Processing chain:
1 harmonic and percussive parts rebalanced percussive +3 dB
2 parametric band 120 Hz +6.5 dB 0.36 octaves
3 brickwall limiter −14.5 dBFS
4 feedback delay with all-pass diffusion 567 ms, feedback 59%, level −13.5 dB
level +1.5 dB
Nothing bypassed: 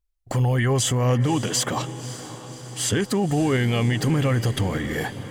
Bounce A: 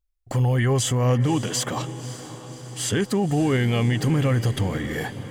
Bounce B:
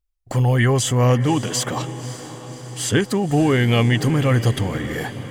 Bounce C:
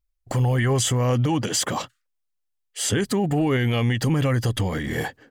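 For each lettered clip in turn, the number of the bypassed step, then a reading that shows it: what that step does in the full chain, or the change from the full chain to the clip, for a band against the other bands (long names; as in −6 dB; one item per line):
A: 1, 125 Hz band +2.0 dB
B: 3, average gain reduction 2.0 dB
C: 4, echo-to-direct ratio −11.5 dB to none audible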